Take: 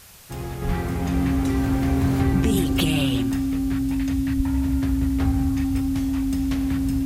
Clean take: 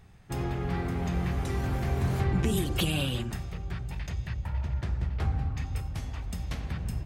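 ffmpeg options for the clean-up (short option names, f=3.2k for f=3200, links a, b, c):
-filter_complex "[0:a]bandreject=f=270:w=30,asplit=3[a][b][c];[a]afade=t=out:st=0.66:d=0.02[d];[b]highpass=f=140:w=0.5412,highpass=f=140:w=1.3066,afade=t=in:st=0.66:d=0.02,afade=t=out:st=0.78:d=0.02[e];[c]afade=t=in:st=0.78:d=0.02[f];[d][e][f]amix=inputs=3:normalize=0,asplit=3[g][h][i];[g]afade=t=out:st=4.36:d=0.02[j];[h]highpass=f=140:w=0.5412,highpass=f=140:w=1.3066,afade=t=in:st=4.36:d=0.02,afade=t=out:st=4.48:d=0.02[k];[i]afade=t=in:st=4.48:d=0.02[l];[j][k][l]amix=inputs=3:normalize=0,afwtdn=0.005,asetnsamples=n=441:p=0,asendcmd='0.62 volume volume -5dB',volume=0dB"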